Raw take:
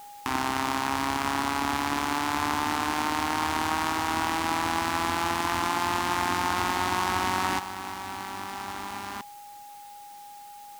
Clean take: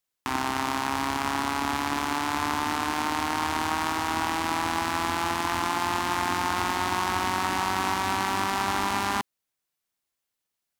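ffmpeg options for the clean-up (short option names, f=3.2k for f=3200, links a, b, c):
-af "bandreject=f=820:w=30,afwtdn=0.0022,asetnsamples=n=441:p=0,asendcmd='7.59 volume volume 10dB',volume=0dB"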